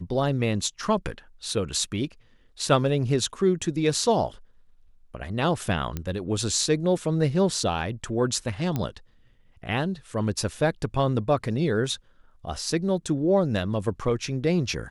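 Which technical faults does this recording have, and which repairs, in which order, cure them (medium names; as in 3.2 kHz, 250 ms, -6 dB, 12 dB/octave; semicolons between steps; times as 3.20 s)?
5.97 s: pop -16 dBFS
8.76 s: pop -14 dBFS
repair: de-click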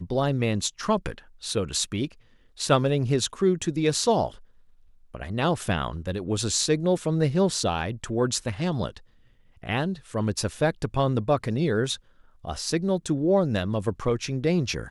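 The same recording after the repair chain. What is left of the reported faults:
nothing left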